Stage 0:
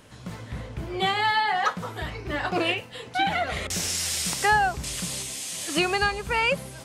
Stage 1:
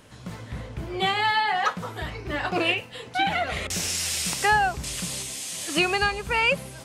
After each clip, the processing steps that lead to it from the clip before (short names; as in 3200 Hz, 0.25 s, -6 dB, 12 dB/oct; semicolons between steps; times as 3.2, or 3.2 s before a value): dynamic EQ 2600 Hz, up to +4 dB, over -42 dBFS, Q 4.6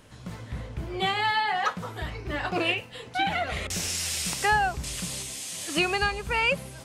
low shelf 73 Hz +6 dB; gain -2.5 dB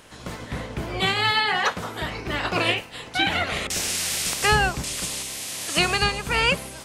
spectral limiter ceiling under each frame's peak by 13 dB; gain +4 dB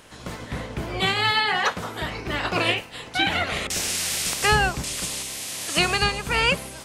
nothing audible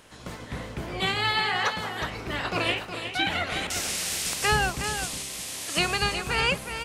echo 0.364 s -8.5 dB; gain -4 dB